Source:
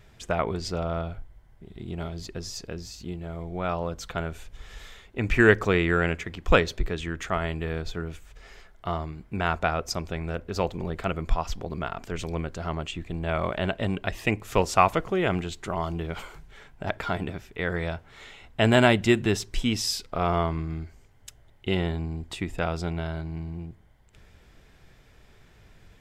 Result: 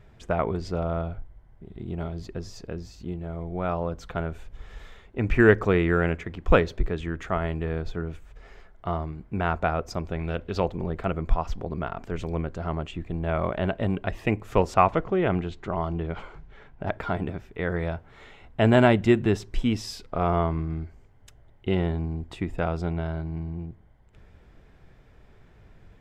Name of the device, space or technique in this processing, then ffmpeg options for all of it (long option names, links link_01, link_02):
through cloth: -filter_complex "[0:a]asettb=1/sr,asplit=3[link_01][link_02][link_03];[link_01]atrim=end=14.744[link_04];[link_02]atrim=start=14.74:end=16.87,asetpts=PTS-STARTPTS,afade=type=in:duration=0.004:curve=qsin,afade=type=out:start_time=2.126:duration=0.004:curve=qsin,lowpass=5300[link_05];[link_03]atrim=start=16.866[link_06];[link_04][link_05]acrossfade=duration=0.004:curve1=hsin:curve2=qsin[link_07];[link_07][link_06]acrossfade=duration=0.004:curve1=qsin:curve2=hsin,highshelf=frequency=2500:gain=-14,asettb=1/sr,asplit=3[link_08][link_09][link_10];[link_08]atrim=end=10.194[link_11];[link_09]atrim=start=10.19:end=10.6,asetpts=PTS-STARTPTS,afade=type=in:duration=0.004:curve=qsin,afade=type=out:start_time=0.406:duration=0.004:curve=qsin,equalizer=frequency=3300:width_type=o:width=1.1:gain=12[link_12];[link_10]atrim=start=10.596[link_13];[link_11][link_12]acrossfade=duration=0.004:curve1=hsin:curve2=qsin[link_14];[link_14][link_13]acrossfade=duration=0.004:curve1=qsin:curve2=hsin,volume=2dB"